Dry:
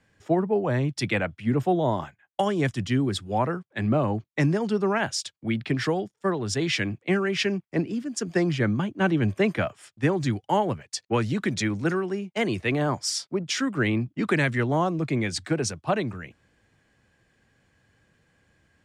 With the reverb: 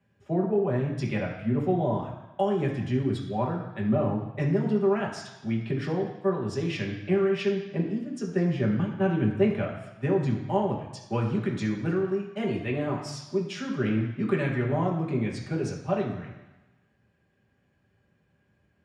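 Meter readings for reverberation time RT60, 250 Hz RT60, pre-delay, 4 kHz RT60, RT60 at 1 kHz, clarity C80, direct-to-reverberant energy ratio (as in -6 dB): 1.1 s, 1.0 s, 3 ms, 1.1 s, 1.1 s, 8.0 dB, -3.0 dB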